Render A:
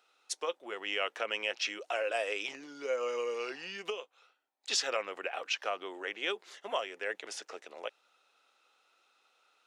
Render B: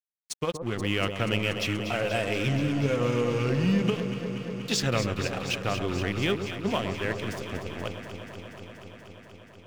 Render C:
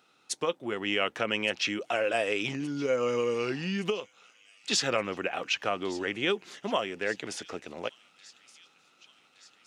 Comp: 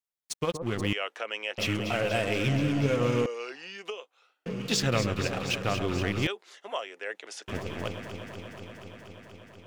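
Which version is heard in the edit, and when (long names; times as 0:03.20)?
B
0:00.93–0:01.58: punch in from A
0:03.26–0:04.46: punch in from A
0:06.27–0:07.48: punch in from A
not used: C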